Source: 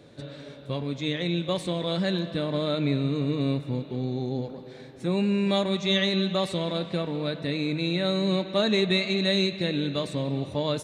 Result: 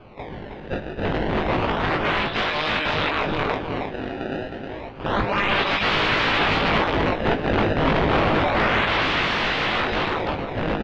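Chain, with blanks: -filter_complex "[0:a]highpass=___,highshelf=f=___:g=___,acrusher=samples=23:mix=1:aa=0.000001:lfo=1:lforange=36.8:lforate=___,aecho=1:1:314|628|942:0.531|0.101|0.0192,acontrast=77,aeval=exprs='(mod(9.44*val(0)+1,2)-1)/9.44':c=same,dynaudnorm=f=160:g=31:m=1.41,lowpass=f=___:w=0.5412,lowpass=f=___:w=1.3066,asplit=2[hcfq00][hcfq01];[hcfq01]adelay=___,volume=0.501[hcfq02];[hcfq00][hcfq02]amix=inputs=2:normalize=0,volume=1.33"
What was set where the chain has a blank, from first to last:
930, 2100, 9, 0.3, 3300, 3300, 19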